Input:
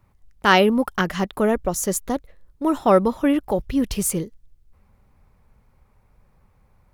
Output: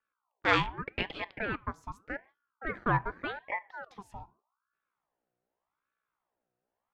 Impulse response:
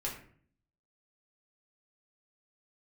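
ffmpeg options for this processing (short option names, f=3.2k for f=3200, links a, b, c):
-filter_complex "[0:a]aeval=exprs='val(0)+0.00631*(sin(2*PI*60*n/s)+sin(2*PI*2*60*n/s)/2+sin(2*PI*3*60*n/s)/3+sin(2*PI*4*60*n/s)/4+sin(2*PI*5*60*n/s)/5)':c=same,acrossover=split=350 4800:gain=0.0891 1 0.0794[a][b][c];[a][b][c]amix=inputs=3:normalize=0,acrossover=split=490|3000[d][e][f];[d]acompressor=threshold=-36dB:ratio=6[g];[g][e][f]amix=inputs=3:normalize=0,afwtdn=0.0224,asplit=2[h][i];[1:a]atrim=start_sample=2205,afade=t=out:st=0.22:d=0.01,atrim=end_sample=10143[j];[i][j]afir=irnorm=-1:irlink=0,volume=-18dB[k];[h][k]amix=inputs=2:normalize=0,aeval=exprs='val(0)*sin(2*PI*930*n/s+930*0.55/0.84*sin(2*PI*0.84*n/s))':c=same,volume=-6.5dB"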